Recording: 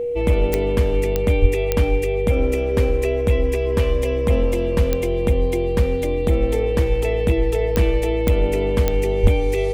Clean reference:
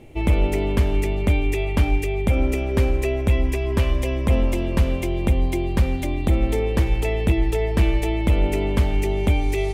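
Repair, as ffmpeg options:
-filter_complex "[0:a]adeclick=t=4,bandreject=f=480:w=30,asplit=3[s0][s1][s2];[s0]afade=t=out:st=1.41:d=0.02[s3];[s1]highpass=f=140:w=0.5412,highpass=f=140:w=1.3066,afade=t=in:st=1.41:d=0.02,afade=t=out:st=1.53:d=0.02[s4];[s2]afade=t=in:st=1.53:d=0.02[s5];[s3][s4][s5]amix=inputs=3:normalize=0,asplit=3[s6][s7][s8];[s6]afade=t=out:st=9.22:d=0.02[s9];[s7]highpass=f=140:w=0.5412,highpass=f=140:w=1.3066,afade=t=in:st=9.22:d=0.02,afade=t=out:st=9.34:d=0.02[s10];[s8]afade=t=in:st=9.34:d=0.02[s11];[s9][s10][s11]amix=inputs=3:normalize=0"

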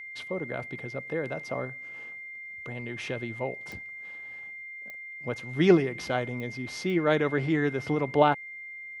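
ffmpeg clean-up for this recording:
-af "adeclick=t=4,bandreject=f=2100:w=30"

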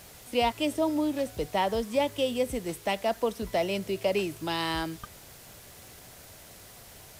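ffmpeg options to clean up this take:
-af "adeclick=t=4,afftdn=nr=24:nf=-50"

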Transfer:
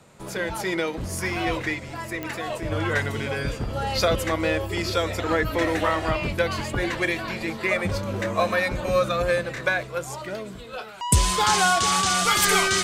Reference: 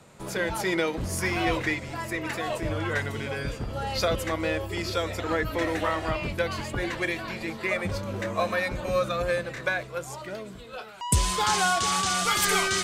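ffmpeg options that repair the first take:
-af "adeclick=t=4,asetnsamples=n=441:p=0,asendcmd='2.72 volume volume -4dB',volume=1"

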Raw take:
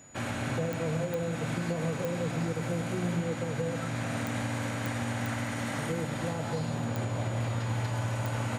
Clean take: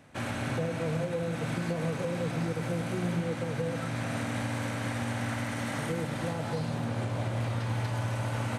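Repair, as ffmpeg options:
-af "adeclick=t=4,bandreject=f=6900:w=30"

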